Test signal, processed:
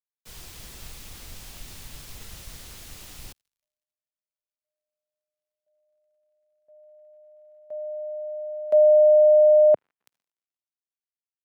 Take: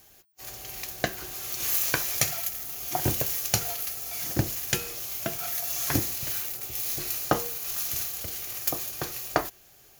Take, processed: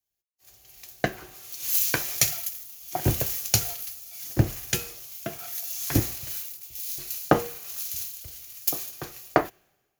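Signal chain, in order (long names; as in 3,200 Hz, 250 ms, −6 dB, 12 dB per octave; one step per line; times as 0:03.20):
dynamic equaliser 1,100 Hz, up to −4 dB, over −36 dBFS, Q 1.3
surface crackle 100 per second −53 dBFS
multiband upward and downward expander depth 100%
level −2 dB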